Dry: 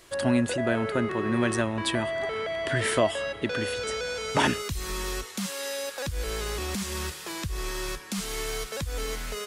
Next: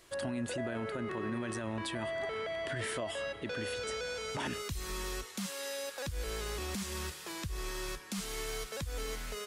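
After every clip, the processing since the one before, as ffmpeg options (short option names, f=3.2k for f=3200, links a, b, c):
-af "alimiter=limit=-21.5dB:level=0:latency=1:release=38,volume=-6.5dB"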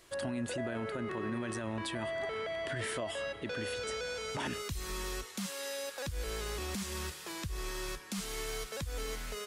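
-af anull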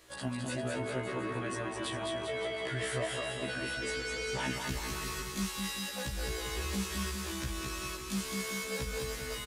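-af "aecho=1:1:210|399|569.1|722.2|860:0.631|0.398|0.251|0.158|0.1,afftfilt=real='re*1.73*eq(mod(b,3),0)':imag='im*1.73*eq(mod(b,3),0)':win_size=2048:overlap=0.75,volume=3dB"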